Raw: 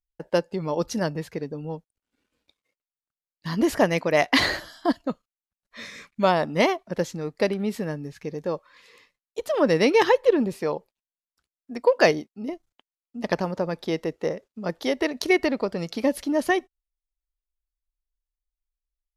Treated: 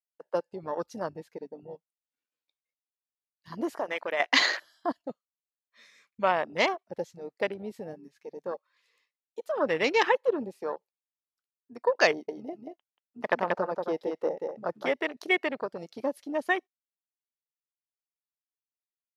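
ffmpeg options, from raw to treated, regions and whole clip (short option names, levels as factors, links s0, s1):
-filter_complex "[0:a]asettb=1/sr,asplit=3[s0][s1][s2];[s0]atrim=end=3.764[s3];[s1]atrim=start=3.76:end=4.2,asetpts=PTS-STARTPTS,afade=t=in:d=0.004:c=qsin,afade=t=out:st=0.436:d=0.004:c=qsin,highpass=310,acompressor=threshold=0.0891:ratio=3:attack=3.2:release=140:knee=1:detection=peak[s4];[s2]atrim=start=4.196[s5];[s3][s4]acrossfade=d=0.004:c1=hsin:c2=qsin[s6];[s6][s5]acrossfade=d=0.004:c1=qsin:c2=hsin,asettb=1/sr,asplit=3[s7][s8][s9];[s7]atrim=end=12.104[s10];[s8]atrim=start=12.1:end=14.94,asetpts=PTS-STARTPTS,afade=t=in:d=0.004:c=qsin,afade=t=out:st=2.836:d=0.004:c=qsin,equalizer=f=800:w=0.42:g=4.5,aecho=1:1:184:0.631,atrim=end_sample=125244[s11];[s9]atrim=start=14.936[s12];[s10][s11]acrossfade=d=0.004:c1=hsin:c2=qsin[s13];[s13][s12]acrossfade=d=0.004:c1=qsin:c2=hsin,highpass=f=970:p=1,afwtdn=0.0224"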